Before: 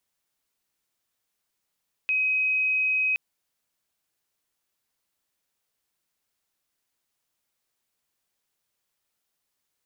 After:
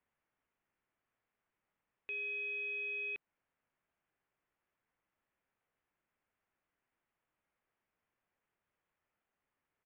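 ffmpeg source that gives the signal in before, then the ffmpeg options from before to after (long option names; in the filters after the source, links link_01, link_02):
-f lavfi -i "aevalsrc='0.0891*sin(2*PI*2530*t)':duration=1.07:sample_rate=44100"
-af "lowpass=frequency=2300:width=0.5412,lowpass=frequency=2300:width=1.3066,alimiter=level_in=5.5dB:limit=-24dB:level=0:latency=1:release=154,volume=-5.5dB,aresample=8000,asoftclip=type=tanh:threshold=-38.5dB,aresample=44100"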